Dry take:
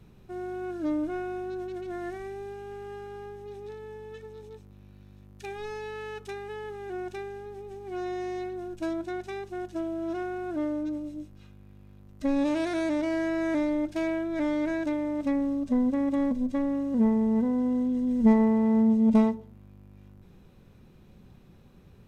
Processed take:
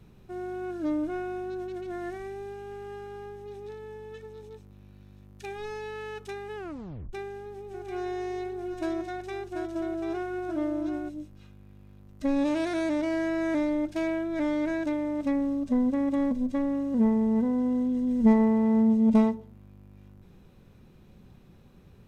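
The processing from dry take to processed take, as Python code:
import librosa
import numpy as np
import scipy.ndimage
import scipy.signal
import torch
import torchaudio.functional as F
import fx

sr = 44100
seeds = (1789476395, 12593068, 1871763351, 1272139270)

y = fx.echo_single(x, sr, ms=738, db=-6.5, at=(7.73, 11.08), fade=0.02)
y = fx.edit(y, sr, fx.tape_stop(start_s=6.56, length_s=0.57), tone=tone)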